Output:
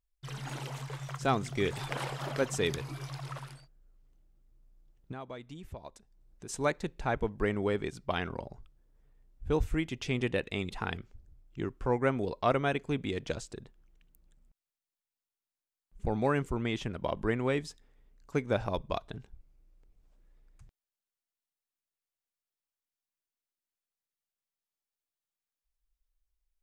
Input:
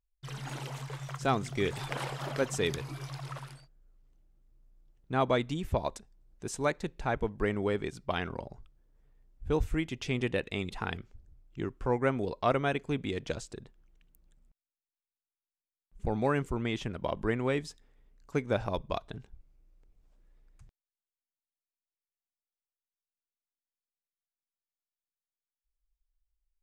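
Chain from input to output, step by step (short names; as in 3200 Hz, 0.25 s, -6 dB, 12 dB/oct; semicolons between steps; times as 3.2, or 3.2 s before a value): 5.12–6.49 compressor 3:1, threshold -46 dBFS, peak gain reduction 17 dB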